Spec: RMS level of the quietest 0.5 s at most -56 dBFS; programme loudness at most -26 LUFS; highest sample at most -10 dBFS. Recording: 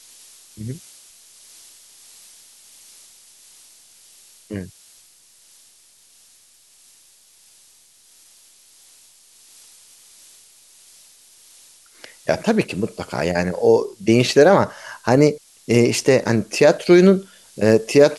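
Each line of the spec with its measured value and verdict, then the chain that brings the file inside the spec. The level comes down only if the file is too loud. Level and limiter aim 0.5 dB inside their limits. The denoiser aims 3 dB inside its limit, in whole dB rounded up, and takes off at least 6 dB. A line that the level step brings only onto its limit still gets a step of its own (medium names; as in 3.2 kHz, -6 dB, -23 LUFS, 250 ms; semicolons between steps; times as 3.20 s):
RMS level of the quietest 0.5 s -53 dBFS: fail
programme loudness -17.0 LUFS: fail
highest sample -2.0 dBFS: fail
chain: trim -9.5 dB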